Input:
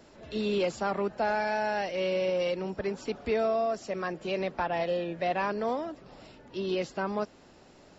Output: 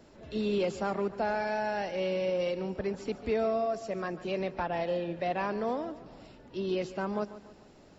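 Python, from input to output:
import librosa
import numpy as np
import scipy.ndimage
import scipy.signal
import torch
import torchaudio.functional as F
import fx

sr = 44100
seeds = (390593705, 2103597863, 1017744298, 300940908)

y = fx.low_shelf(x, sr, hz=480.0, db=5.0)
y = fx.echo_feedback(y, sr, ms=144, feedback_pct=43, wet_db=-15)
y = y * 10.0 ** (-4.0 / 20.0)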